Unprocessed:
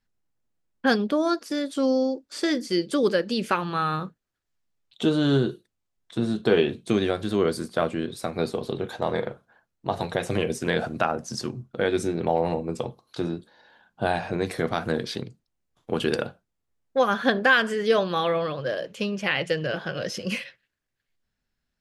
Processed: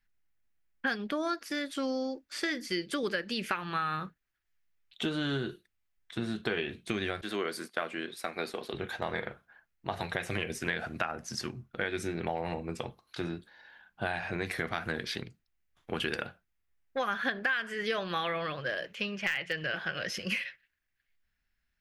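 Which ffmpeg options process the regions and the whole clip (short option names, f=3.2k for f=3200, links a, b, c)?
-filter_complex "[0:a]asettb=1/sr,asplit=3[a][b][c];[a]atrim=end=7.214[d];[b]atrim=start=7.21:end=8.74,asetpts=PTS-STARTPTS,afade=t=in:d=0.004:c=qsin,afade=t=out:st=1.526:d=0.004:c=qsin,highpass=280,agate=range=-33dB:threshold=-40dB:ratio=3:release=100:detection=peak[e];[c]atrim=start=8.736[f];[d][e]acrossfade=d=0.004:c1=hsin:c2=qsin[g];[g][f]acrossfade=d=0.004:c1=qsin:c2=hsin,asettb=1/sr,asplit=3[h][i][j];[h]atrim=end=18.864[k];[i]atrim=start=18.86:end=20.08,asetpts=PTS-STARTPTS,afade=t=in:d=0.004:c=qsin,afade=t=out:st=1.216:d=0.004:c=qsin,acrossover=split=5800[l][m];[m]acompressor=threshold=-59dB:ratio=4:attack=1:release=60[n];[l][n]amix=inputs=2:normalize=0,lowshelf=f=440:g=-2.5,aeval=exprs='0.188*(abs(mod(val(0)/0.188+3,4)-2)-1)':c=same[o];[j]atrim=start=20.076[p];[k][o]acrossfade=d=0.004:c1=hsin:c2=qsin[q];[q][p]acrossfade=d=0.004:c1=qsin:c2=hsin,equalizer=f=125:t=o:w=1:g=-8,equalizer=f=250:t=o:w=1:g=-7,equalizer=f=500:t=o:w=1:g=-9,equalizer=f=1k:t=o:w=1:g=-5,equalizer=f=2k:t=o:w=1:g=5,equalizer=f=4k:t=o:w=1:g=-4,equalizer=f=8k:t=o:w=1:g=-7,acompressor=threshold=-30dB:ratio=6,volume=2dB"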